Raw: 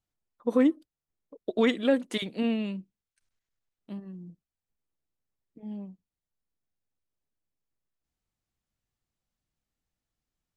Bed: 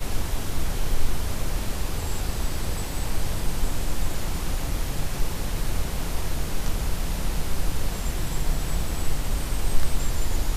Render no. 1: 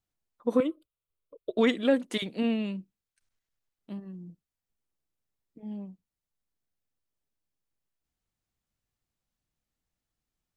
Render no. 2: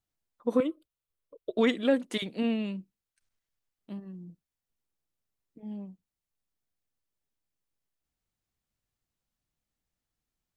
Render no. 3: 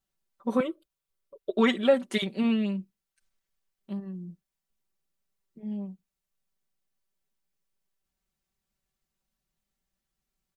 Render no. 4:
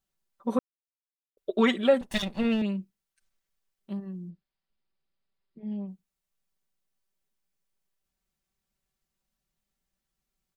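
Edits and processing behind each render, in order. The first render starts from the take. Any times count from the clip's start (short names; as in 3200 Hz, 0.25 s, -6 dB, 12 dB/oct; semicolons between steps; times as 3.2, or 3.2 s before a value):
0.6–1.57 fixed phaser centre 1200 Hz, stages 8
gain -1 dB
comb 5.2 ms, depth 85%; dynamic EQ 1200 Hz, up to +4 dB, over -37 dBFS, Q 0.81
0.59–1.37 mute; 2.01–2.62 minimum comb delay 1.1 ms; 4.3–5.88 brick-wall FIR low-pass 5200 Hz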